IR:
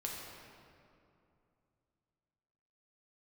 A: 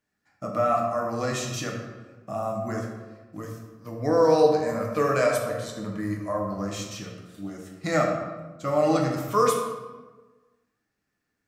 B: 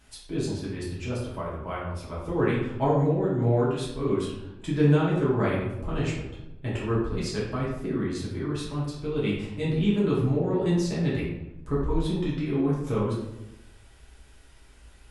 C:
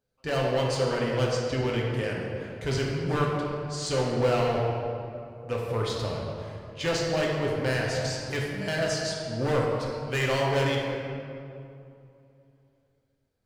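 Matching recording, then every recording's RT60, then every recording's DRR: C; 1.3, 0.95, 2.6 s; -1.0, -8.0, -3.0 dB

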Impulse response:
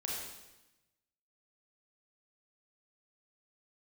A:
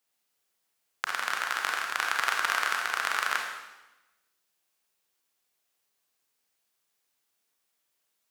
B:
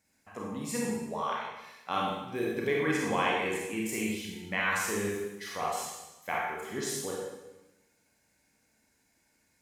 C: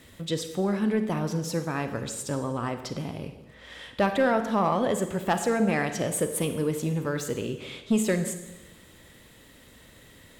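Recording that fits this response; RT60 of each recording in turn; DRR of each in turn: B; 1.0, 1.0, 1.0 s; 0.5, -4.0, 8.0 dB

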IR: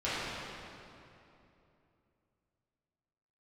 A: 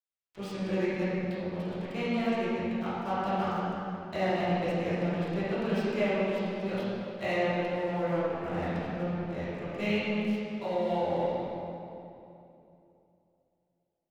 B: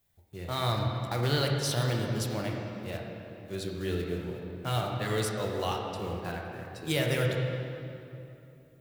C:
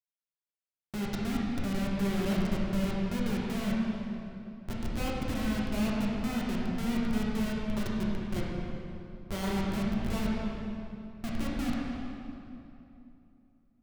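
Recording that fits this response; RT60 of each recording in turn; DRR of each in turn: A; 2.9, 2.9, 2.9 s; -13.0, -0.5, -5.5 dB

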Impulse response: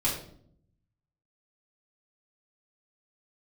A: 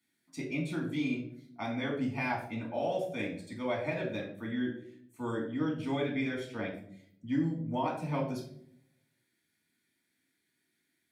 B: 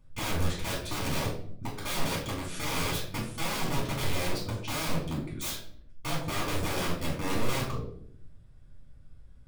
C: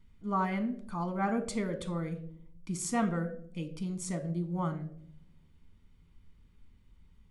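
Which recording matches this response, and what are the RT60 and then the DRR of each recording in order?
B; 0.65, 0.65, 0.65 s; -2.0, -7.0, 7.5 dB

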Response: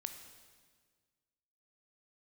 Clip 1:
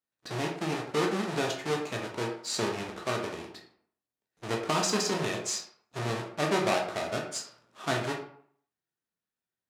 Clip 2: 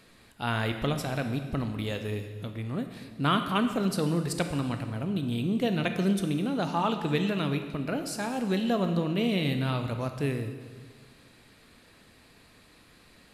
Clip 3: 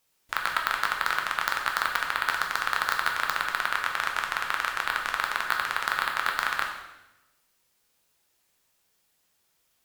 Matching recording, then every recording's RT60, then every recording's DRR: 2; 0.60, 1.6, 1.0 s; 0.0, 6.5, 1.0 dB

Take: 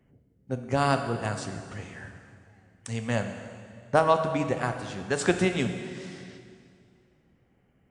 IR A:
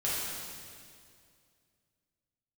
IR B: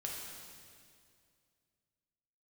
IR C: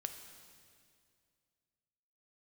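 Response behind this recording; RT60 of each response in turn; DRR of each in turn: C; 2.3, 2.3, 2.2 s; -9.0, -2.5, 6.0 dB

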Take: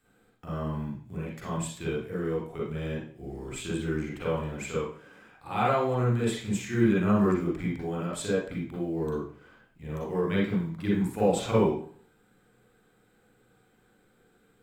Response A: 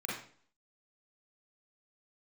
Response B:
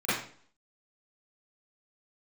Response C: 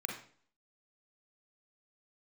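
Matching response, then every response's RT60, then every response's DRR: A; 0.50, 0.50, 0.50 s; -6.0, -15.5, 0.5 dB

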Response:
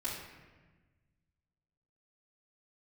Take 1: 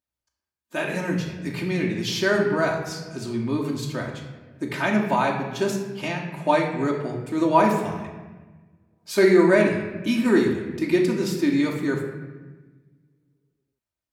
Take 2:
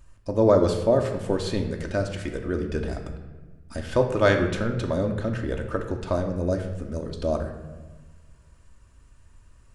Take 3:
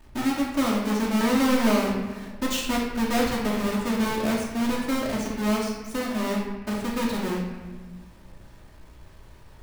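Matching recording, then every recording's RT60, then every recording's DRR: 3; 1.3, 1.3, 1.3 s; -1.0, 3.0, -11.0 dB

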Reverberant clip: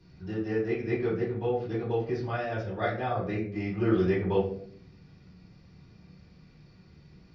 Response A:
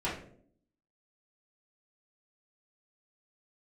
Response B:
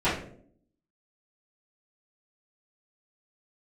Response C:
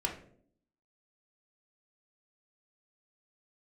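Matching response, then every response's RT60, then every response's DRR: A; 0.60, 0.60, 0.60 s; -9.5, -15.0, 0.0 dB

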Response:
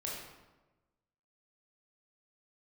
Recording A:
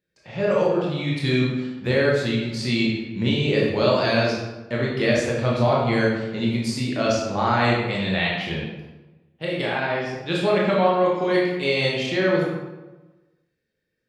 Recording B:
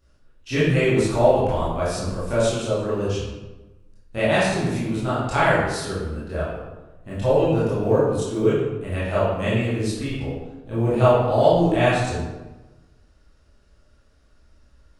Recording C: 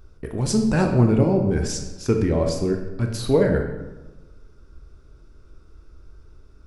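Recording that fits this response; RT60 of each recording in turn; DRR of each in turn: A; 1.1, 1.1, 1.1 s; -4.5, -10.5, 3.0 dB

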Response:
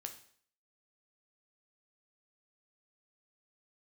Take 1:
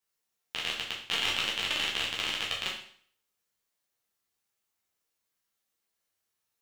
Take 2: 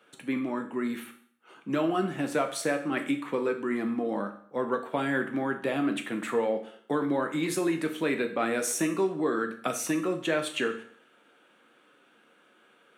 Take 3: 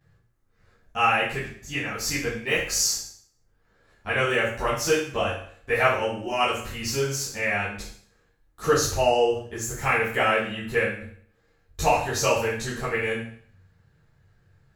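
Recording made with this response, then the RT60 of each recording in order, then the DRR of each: 2; 0.55, 0.55, 0.55 s; -5.0, 5.0, -11.5 dB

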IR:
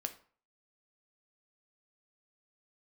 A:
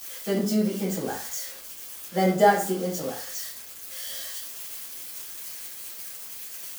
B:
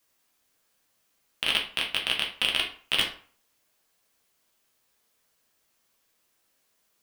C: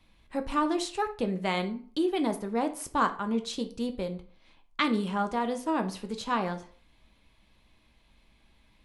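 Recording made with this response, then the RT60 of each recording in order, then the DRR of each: C; 0.45, 0.45, 0.45 s; -10.5, -1.5, 6.5 dB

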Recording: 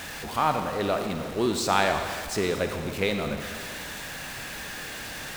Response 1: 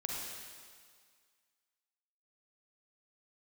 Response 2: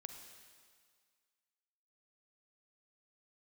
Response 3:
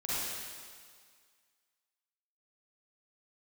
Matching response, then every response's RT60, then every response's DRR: 2; 1.9, 1.9, 1.9 s; -2.5, 5.5, -10.5 dB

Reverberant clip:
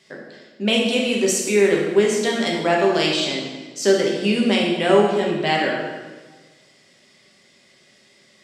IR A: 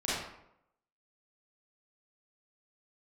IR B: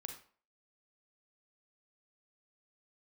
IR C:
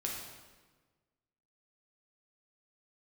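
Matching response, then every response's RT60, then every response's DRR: C; 0.80, 0.45, 1.4 s; -10.0, 4.0, -2.5 dB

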